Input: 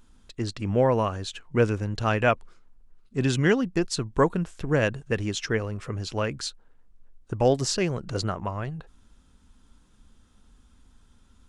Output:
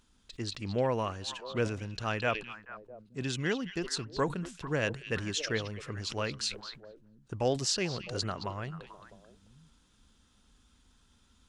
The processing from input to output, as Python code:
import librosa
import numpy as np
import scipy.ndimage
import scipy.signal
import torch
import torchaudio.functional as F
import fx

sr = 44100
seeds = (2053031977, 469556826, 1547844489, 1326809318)

y = fx.highpass(x, sr, hz=42.0, slope=6)
y = fx.peak_eq(y, sr, hz=4400.0, db=7.0, octaves=2.4)
y = fx.rider(y, sr, range_db=3, speed_s=2.0)
y = fx.echo_stepped(y, sr, ms=219, hz=3300.0, octaves=-1.4, feedback_pct=70, wet_db=-8)
y = fx.sustainer(y, sr, db_per_s=140.0)
y = F.gain(torch.from_numpy(y), -9.0).numpy()